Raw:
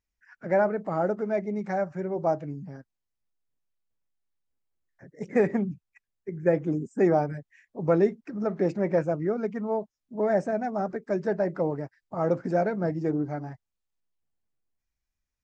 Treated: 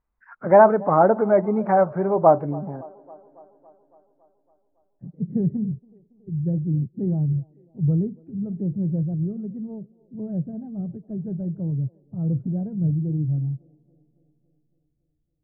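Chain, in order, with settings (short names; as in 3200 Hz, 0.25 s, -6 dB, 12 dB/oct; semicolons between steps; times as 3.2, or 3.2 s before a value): vibrato 2 Hz 87 cents; low-pass sweep 1100 Hz -> 130 Hz, 2.32–5.54; band-limited delay 0.279 s, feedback 62%, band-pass 570 Hz, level -21.5 dB; gain +7.5 dB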